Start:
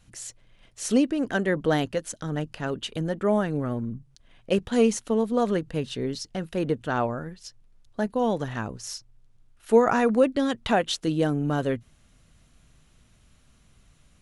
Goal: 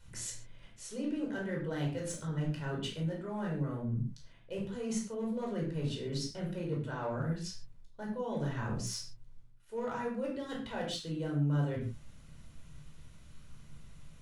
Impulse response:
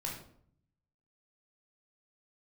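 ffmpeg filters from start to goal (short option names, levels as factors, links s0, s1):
-filter_complex "[0:a]areverse,acompressor=threshold=0.0178:ratio=10,areverse,volume=31.6,asoftclip=hard,volume=0.0316[s0];[1:a]atrim=start_sample=2205,afade=t=out:st=0.21:d=0.01,atrim=end_sample=9702[s1];[s0][s1]afir=irnorm=-1:irlink=0"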